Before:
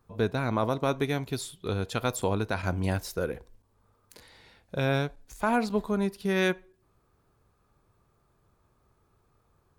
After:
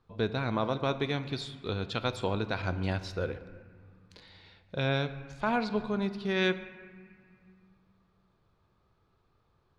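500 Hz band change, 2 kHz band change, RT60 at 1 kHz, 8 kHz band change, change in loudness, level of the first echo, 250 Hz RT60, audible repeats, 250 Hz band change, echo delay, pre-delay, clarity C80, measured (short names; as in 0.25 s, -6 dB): -3.0 dB, -1.5 dB, 2.0 s, under -10 dB, -2.5 dB, none, 3.1 s, none, -3.0 dB, none, 5 ms, 14.0 dB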